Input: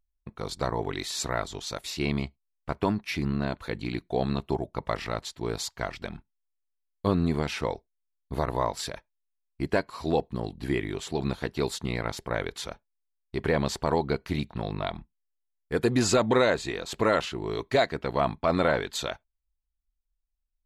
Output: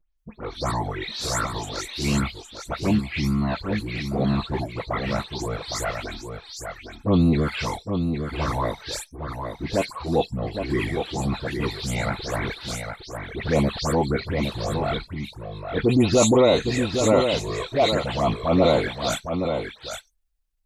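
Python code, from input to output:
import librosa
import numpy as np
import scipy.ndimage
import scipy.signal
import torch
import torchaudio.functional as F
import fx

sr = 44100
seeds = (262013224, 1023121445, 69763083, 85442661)

p1 = fx.spec_delay(x, sr, highs='late', ms=169)
p2 = fx.env_flanger(p1, sr, rest_ms=6.5, full_db=-21.0)
p3 = fx.transient(p2, sr, attack_db=-4, sustain_db=2)
p4 = p3 + fx.echo_single(p3, sr, ms=811, db=-6.5, dry=0)
y = p4 * librosa.db_to_amplitude(8.0)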